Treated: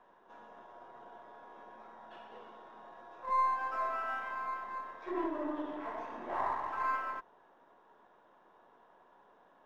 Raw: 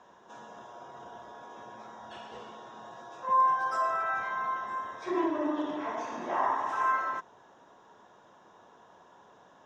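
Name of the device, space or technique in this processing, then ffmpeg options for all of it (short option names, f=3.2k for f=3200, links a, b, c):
crystal radio: -af "highpass=220,lowpass=2.6k,aeval=exprs='if(lt(val(0),0),0.708*val(0),val(0))':c=same,volume=-4.5dB"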